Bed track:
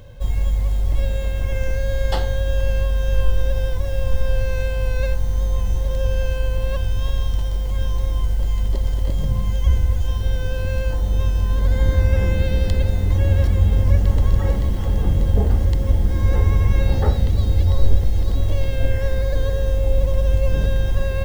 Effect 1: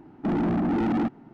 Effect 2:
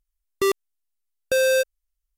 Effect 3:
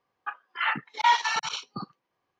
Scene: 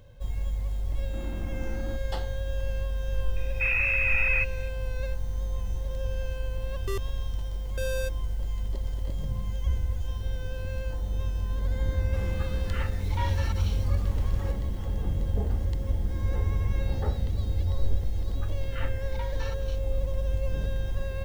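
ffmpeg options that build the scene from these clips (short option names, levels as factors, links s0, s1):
-filter_complex "[1:a]asplit=2[s0][s1];[3:a]asplit=2[s2][s3];[0:a]volume=0.299[s4];[s1]lowpass=f=2400:t=q:w=0.5098,lowpass=f=2400:t=q:w=0.6013,lowpass=f=2400:t=q:w=0.9,lowpass=f=2400:t=q:w=2.563,afreqshift=-2800[s5];[s2]aeval=exprs='val(0)+0.5*0.0335*sgn(val(0))':c=same[s6];[s3]tremolo=f=3.1:d=0.79[s7];[s0]atrim=end=1.33,asetpts=PTS-STARTPTS,volume=0.133,afade=t=in:d=0.004:c=hsin,afade=t=out:st=1.326:d=0.004:c=hsin,adelay=890[s8];[s5]atrim=end=1.33,asetpts=PTS-STARTPTS,volume=0.794,afade=t=in:d=0.004:c=hsin,afade=t=out:st=1.326:d=0.004:c=hsin,adelay=3360[s9];[2:a]atrim=end=2.17,asetpts=PTS-STARTPTS,volume=0.211,afade=t=in:d=0.004:c=hsin,afade=t=out:st=2.166:d=0.004:c=hsin,adelay=6460[s10];[s6]atrim=end=2.39,asetpts=PTS-STARTPTS,volume=0.168,afade=t=in:d=0.004:c=hsin,afade=t=out:st=2.386:d=0.004:c=hsin,adelay=12130[s11];[s7]atrim=end=2.39,asetpts=PTS-STARTPTS,volume=0.188,afade=t=in:d=0.004:c=hsin,afade=t=out:st=2.386:d=0.004:c=hsin,adelay=18150[s12];[s4][s8][s9][s10][s11][s12]amix=inputs=6:normalize=0"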